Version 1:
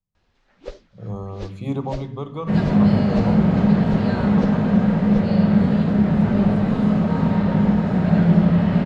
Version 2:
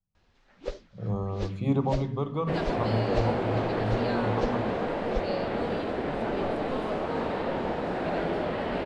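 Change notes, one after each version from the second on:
speech: add low-pass filter 3,400 Hz 6 dB per octave
second sound: send off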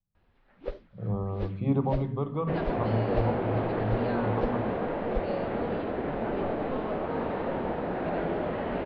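master: add high-frequency loss of the air 350 metres

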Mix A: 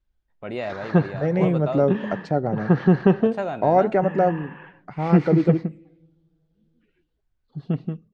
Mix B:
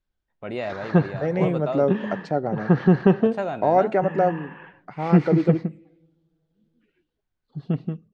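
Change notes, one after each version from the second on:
second voice: add low-shelf EQ 140 Hz −11 dB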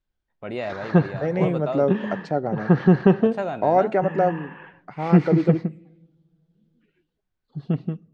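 background: send on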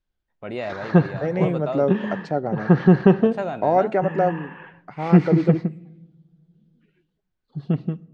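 background: send +9.5 dB

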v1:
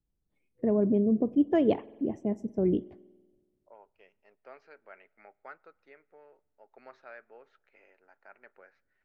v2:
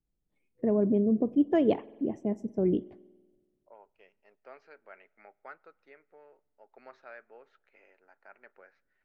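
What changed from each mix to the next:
master: add parametric band 82 Hz −5.5 dB 0.89 octaves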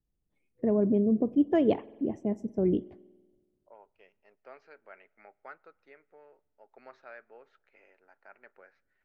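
master: add parametric band 82 Hz +5.5 dB 0.89 octaves

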